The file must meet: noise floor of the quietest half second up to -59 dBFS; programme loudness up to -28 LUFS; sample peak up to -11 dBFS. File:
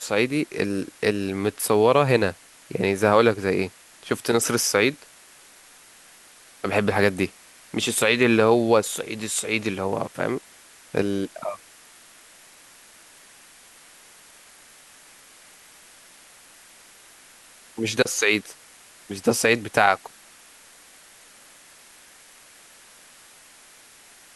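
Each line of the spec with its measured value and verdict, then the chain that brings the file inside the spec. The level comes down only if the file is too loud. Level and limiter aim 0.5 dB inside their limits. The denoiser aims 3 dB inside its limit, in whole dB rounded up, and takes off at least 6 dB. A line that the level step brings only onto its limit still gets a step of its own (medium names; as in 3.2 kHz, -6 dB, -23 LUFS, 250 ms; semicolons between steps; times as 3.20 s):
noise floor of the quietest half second -51 dBFS: fail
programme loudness -22.5 LUFS: fail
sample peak -2.0 dBFS: fail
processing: noise reduction 6 dB, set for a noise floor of -51 dBFS; trim -6 dB; peak limiter -11.5 dBFS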